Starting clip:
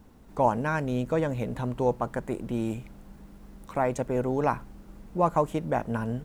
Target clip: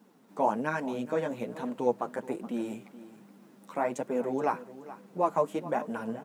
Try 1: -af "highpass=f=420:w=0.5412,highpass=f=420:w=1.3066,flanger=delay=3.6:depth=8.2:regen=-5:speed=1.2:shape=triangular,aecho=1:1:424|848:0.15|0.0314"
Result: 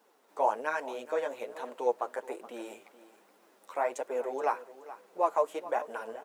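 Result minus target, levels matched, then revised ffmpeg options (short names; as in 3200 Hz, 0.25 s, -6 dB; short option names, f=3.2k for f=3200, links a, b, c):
250 Hz band -12.0 dB
-af "highpass=f=190:w=0.5412,highpass=f=190:w=1.3066,flanger=delay=3.6:depth=8.2:regen=-5:speed=1.2:shape=triangular,aecho=1:1:424|848:0.15|0.0314"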